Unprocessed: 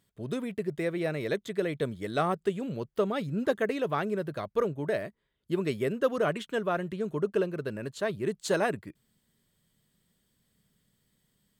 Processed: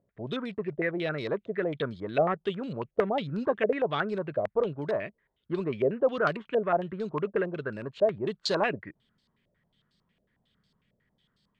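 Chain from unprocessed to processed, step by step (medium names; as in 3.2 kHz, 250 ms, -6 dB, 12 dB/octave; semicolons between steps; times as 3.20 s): in parallel at -6.5 dB: overload inside the chain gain 25.5 dB; on the sum: step-sequenced low-pass 11 Hz 590–4500 Hz; trim -4.5 dB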